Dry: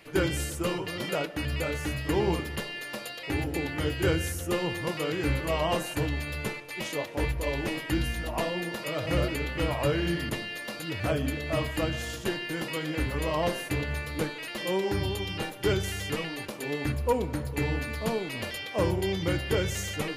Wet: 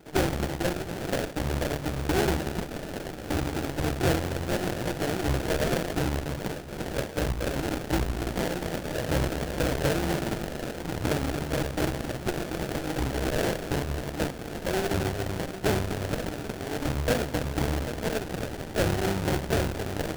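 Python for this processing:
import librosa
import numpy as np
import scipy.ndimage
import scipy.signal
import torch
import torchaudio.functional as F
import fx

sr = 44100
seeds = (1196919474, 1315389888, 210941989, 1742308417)

y = fx.echo_alternate(x, sr, ms=265, hz=1200.0, feedback_pct=79, wet_db=-11)
y = fx.cheby_harmonics(y, sr, harmonics=(8,), levels_db=(-18,), full_scale_db=-13.5)
y = fx.sample_hold(y, sr, seeds[0], rate_hz=1100.0, jitter_pct=20)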